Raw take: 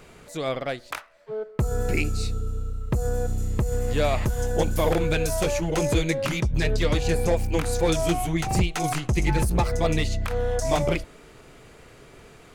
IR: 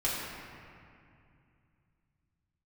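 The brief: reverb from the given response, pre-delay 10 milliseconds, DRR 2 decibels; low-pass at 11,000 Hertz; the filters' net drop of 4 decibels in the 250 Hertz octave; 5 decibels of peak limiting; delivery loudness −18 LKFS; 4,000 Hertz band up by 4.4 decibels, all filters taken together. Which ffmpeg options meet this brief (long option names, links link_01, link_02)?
-filter_complex "[0:a]lowpass=11000,equalizer=frequency=250:width_type=o:gain=-7,equalizer=frequency=4000:width_type=o:gain=5.5,alimiter=limit=-15dB:level=0:latency=1,asplit=2[link_01][link_02];[1:a]atrim=start_sample=2205,adelay=10[link_03];[link_02][link_03]afir=irnorm=-1:irlink=0,volume=-10.5dB[link_04];[link_01][link_04]amix=inputs=2:normalize=0,volume=6.5dB"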